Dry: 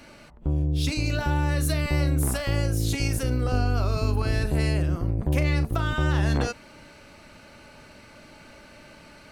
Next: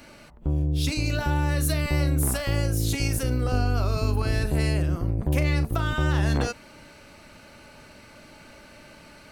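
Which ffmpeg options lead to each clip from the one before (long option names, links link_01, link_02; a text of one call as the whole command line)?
ffmpeg -i in.wav -af "highshelf=frequency=11000:gain=6.5" out.wav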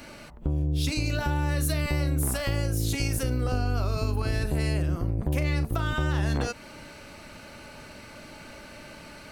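ffmpeg -i in.wav -af "acompressor=threshold=-29dB:ratio=2.5,volume=3.5dB" out.wav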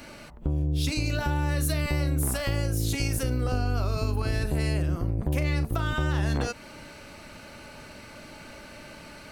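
ffmpeg -i in.wav -af anull out.wav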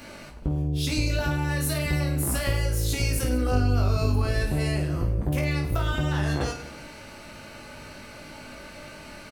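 ffmpeg -i in.wav -af "aecho=1:1:20|52|103.2|185.1|316.2:0.631|0.398|0.251|0.158|0.1" out.wav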